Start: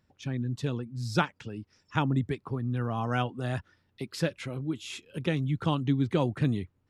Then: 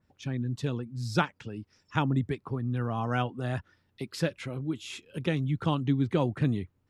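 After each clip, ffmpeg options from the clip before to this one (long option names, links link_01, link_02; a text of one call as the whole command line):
ffmpeg -i in.wav -af "adynamicequalizer=threshold=0.00398:dfrequency=2900:dqfactor=0.7:tfrequency=2900:tqfactor=0.7:attack=5:release=100:ratio=0.375:range=2:mode=cutabove:tftype=highshelf" out.wav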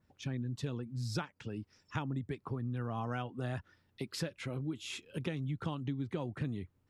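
ffmpeg -i in.wav -af "acompressor=threshold=-32dB:ratio=6,volume=-1.5dB" out.wav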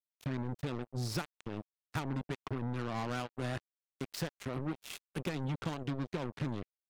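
ffmpeg -i in.wav -af "acrusher=bits=5:mix=0:aa=0.5" out.wav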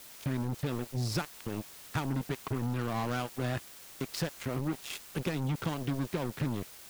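ffmpeg -i in.wav -af "aeval=exprs='val(0)+0.5*0.00891*sgn(val(0))':channel_layout=same,volume=2.5dB" out.wav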